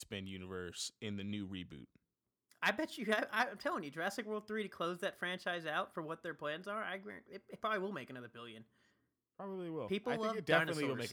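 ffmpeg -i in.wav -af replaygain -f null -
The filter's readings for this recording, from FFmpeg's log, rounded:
track_gain = +20.3 dB
track_peak = 0.134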